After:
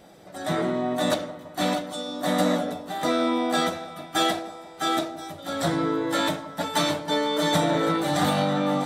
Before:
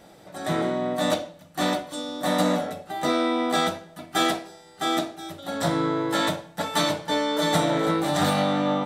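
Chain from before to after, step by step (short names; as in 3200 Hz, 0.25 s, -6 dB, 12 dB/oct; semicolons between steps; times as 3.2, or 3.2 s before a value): bin magnitudes rounded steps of 15 dB; split-band echo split 1100 Hz, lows 0.169 s, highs 0.648 s, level -13 dB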